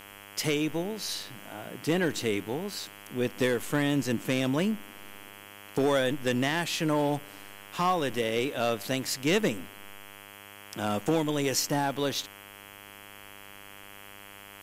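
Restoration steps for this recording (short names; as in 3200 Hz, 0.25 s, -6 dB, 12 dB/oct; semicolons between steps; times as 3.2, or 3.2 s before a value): de-hum 100.4 Hz, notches 33; noise print and reduce 27 dB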